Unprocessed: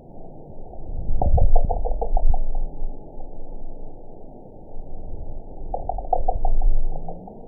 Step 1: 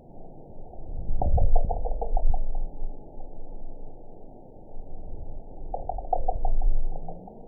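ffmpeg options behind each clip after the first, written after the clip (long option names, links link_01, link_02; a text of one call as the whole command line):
ffmpeg -i in.wav -af "bandreject=frequency=50.05:width_type=h:width=4,bandreject=frequency=100.1:width_type=h:width=4,bandreject=frequency=150.15:width_type=h:width=4,bandreject=frequency=200.2:width_type=h:width=4,bandreject=frequency=250.25:width_type=h:width=4,bandreject=frequency=300.3:width_type=h:width=4,bandreject=frequency=350.35:width_type=h:width=4,bandreject=frequency=400.4:width_type=h:width=4,bandreject=frequency=450.45:width_type=h:width=4,bandreject=frequency=500.5:width_type=h:width=4,bandreject=frequency=550.55:width_type=h:width=4,bandreject=frequency=600.6:width_type=h:width=4,bandreject=frequency=650.65:width_type=h:width=4,volume=-4.5dB" out.wav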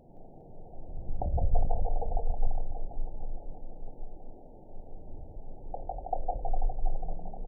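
ffmpeg -i in.wav -af "aecho=1:1:170|408|741.2|1208|1861:0.631|0.398|0.251|0.158|0.1,volume=-6.5dB" out.wav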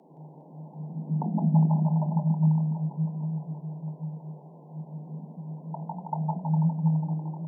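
ffmpeg -i in.wav -af "afreqshift=140" out.wav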